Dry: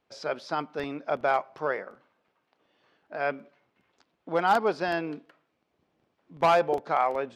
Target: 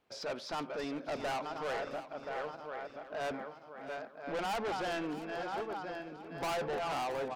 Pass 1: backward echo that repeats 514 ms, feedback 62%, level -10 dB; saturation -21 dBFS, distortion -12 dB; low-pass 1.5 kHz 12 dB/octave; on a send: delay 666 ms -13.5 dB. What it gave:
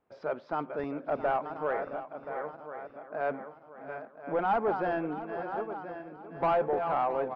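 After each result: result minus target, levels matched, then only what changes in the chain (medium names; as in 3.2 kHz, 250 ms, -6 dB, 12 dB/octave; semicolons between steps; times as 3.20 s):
saturation: distortion -9 dB; 2 kHz band -4.5 dB
change: saturation -33 dBFS, distortion -3 dB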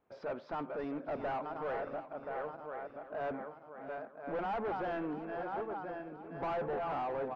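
2 kHz band -3.5 dB
remove: low-pass 1.5 kHz 12 dB/octave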